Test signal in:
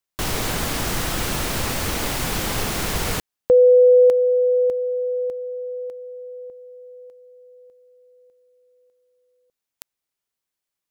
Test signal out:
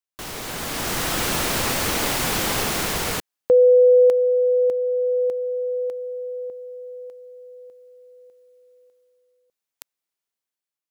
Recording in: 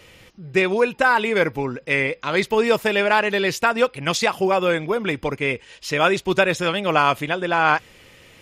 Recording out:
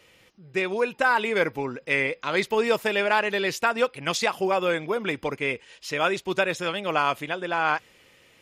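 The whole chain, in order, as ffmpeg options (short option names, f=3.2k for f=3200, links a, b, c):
-af "lowshelf=f=130:g=-10,dynaudnorm=f=230:g=7:m=14dB,volume=-8dB"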